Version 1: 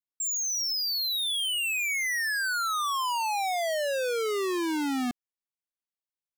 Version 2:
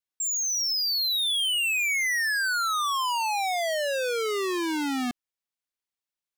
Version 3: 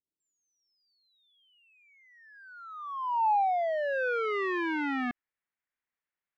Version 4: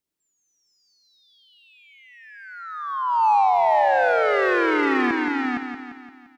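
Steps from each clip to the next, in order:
peaking EQ 3 kHz +3.5 dB 2.9 oct
peak limiter -27.5 dBFS, peak gain reduction 4 dB; low-pass sweep 350 Hz -> 1.9 kHz, 2.06–4.36 s
delay 462 ms -3 dB; in parallel at -7 dB: saturation -32.5 dBFS, distortion -8 dB; on the sum: feedback delay 173 ms, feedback 54%, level -7.5 dB; trim +6 dB

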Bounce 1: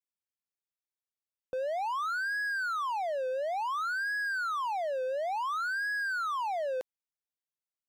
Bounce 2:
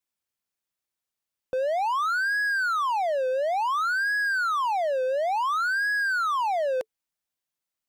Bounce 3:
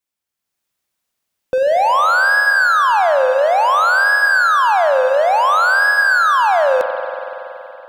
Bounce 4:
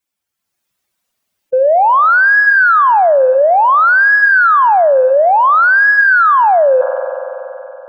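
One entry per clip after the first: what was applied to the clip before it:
band-stop 440 Hz, Q 13; trim +7 dB
level rider gain up to 8.5 dB; spring tank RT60 3.4 s, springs 47 ms, chirp 40 ms, DRR 5.5 dB; trim +2.5 dB
spectral contrast enhancement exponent 1.9; trim +4.5 dB

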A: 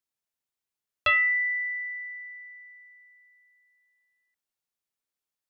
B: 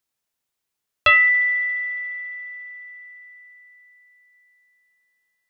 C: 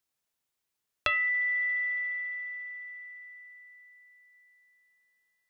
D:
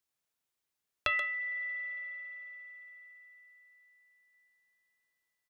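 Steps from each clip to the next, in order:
spring tank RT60 3.9 s, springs 45 ms, chirp 50 ms, DRR 20 dB; trim +8 dB
compression 6:1, threshold -24 dBFS, peak gain reduction 11.5 dB; trim -3 dB
speakerphone echo 130 ms, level -7 dB; trim -3 dB

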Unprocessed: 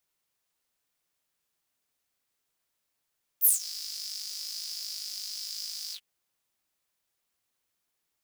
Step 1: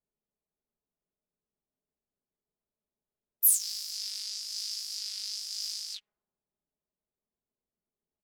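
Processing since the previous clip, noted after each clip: level-controlled noise filter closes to 490 Hz, open at -32.5 dBFS; comb 4.8 ms, depth 46%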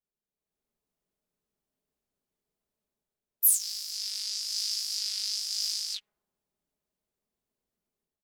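level rider gain up to 10.5 dB; trim -5.5 dB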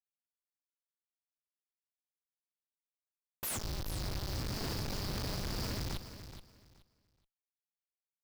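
Schmitt trigger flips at -28.5 dBFS; feedback delay 425 ms, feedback 21%, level -11.5 dB; trim -1 dB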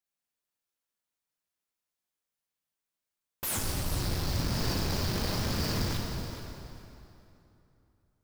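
plate-style reverb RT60 3 s, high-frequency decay 0.7×, DRR -0.5 dB; trim +4 dB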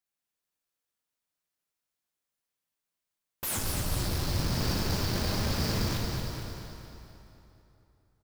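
feedback delay 229 ms, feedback 46%, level -7 dB

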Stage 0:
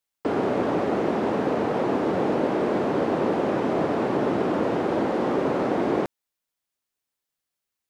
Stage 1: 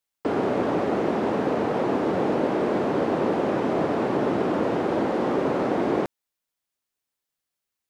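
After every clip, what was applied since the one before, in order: no audible change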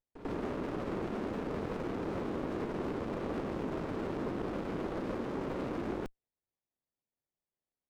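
peak limiter -17.5 dBFS, peak gain reduction 6 dB; reverse echo 95 ms -12.5 dB; sliding maximum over 33 samples; trim -9 dB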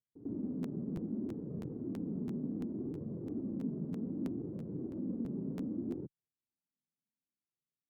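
flange 0.65 Hz, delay 1.6 ms, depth 3.6 ms, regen -33%; Butterworth band-pass 180 Hz, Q 1.1; crackling interface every 0.33 s, samples 512, repeat, from 0.62 s; trim +6.5 dB

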